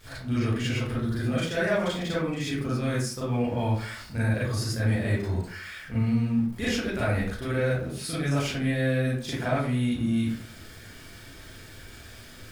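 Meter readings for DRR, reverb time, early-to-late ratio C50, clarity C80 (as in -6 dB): -9.5 dB, 0.50 s, 0.5 dB, 6.0 dB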